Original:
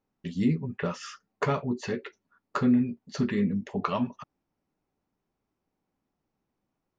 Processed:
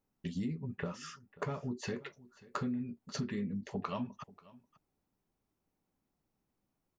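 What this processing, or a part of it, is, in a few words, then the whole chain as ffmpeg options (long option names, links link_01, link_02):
ASMR close-microphone chain: -filter_complex "[0:a]lowshelf=frequency=160:gain=5,acompressor=threshold=-30dB:ratio=6,highshelf=frequency=6200:gain=7.5,asettb=1/sr,asplit=3[link_01][link_02][link_03];[link_01]atrim=end=0.754[link_04];[link_02]atrim=start=0.75:end=1.63,asetpts=PTS-STARTPTS,afade=type=in:duration=0.004:curve=qsin,afade=type=out:start_time=0.876:duration=0.004:curve=qsin,equalizer=frequency=5600:width=0.34:gain=-5[link_05];[link_03]atrim=start=1.626[link_06];[link_04][link_05]acrossfade=duration=0.004:curve1=hsin:curve2=qsin[link_07];[link_07][link_06]acrossfade=duration=0.004:curve1=qsin:curve2=hsin,aecho=1:1:537:0.0891,volume=-4dB"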